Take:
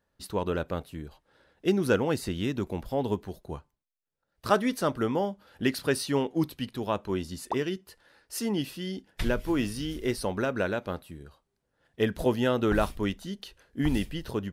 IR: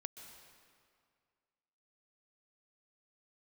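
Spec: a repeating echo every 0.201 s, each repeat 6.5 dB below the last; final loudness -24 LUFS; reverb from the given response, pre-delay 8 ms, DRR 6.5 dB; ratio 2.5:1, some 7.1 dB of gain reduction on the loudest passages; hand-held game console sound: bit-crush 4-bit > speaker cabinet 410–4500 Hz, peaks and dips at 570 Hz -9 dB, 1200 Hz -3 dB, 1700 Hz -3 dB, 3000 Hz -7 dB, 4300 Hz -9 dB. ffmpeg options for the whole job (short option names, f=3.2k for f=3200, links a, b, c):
-filter_complex "[0:a]acompressor=threshold=-29dB:ratio=2.5,aecho=1:1:201|402|603|804|1005|1206:0.473|0.222|0.105|0.0491|0.0231|0.0109,asplit=2[a][b];[1:a]atrim=start_sample=2205,adelay=8[c];[b][c]afir=irnorm=-1:irlink=0,volume=-3dB[d];[a][d]amix=inputs=2:normalize=0,acrusher=bits=3:mix=0:aa=0.000001,highpass=410,equalizer=f=570:t=q:w=4:g=-9,equalizer=f=1.2k:t=q:w=4:g=-3,equalizer=f=1.7k:t=q:w=4:g=-3,equalizer=f=3k:t=q:w=4:g=-7,equalizer=f=4.3k:t=q:w=4:g=-9,lowpass=f=4.5k:w=0.5412,lowpass=f=4.5k:w=1.3066,volume=13.5dB"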